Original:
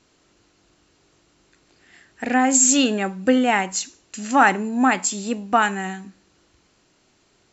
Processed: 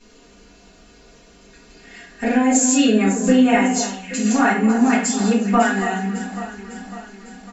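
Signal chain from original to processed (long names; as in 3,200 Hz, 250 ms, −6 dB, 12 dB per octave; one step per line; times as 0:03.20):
downward compressor 2 to 1, threshold −35 dBFS, peak gain reduction 13.5 dB
comb filter 4.2 ms, depth 70%
on a send: delay that swaps between a low-pass and a high-pass 276 ms, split 1,600 Hz, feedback 73%, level −9.5 dB
on the sum: rectangular room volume 46 cubic metres, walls mixed, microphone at 1.7 metres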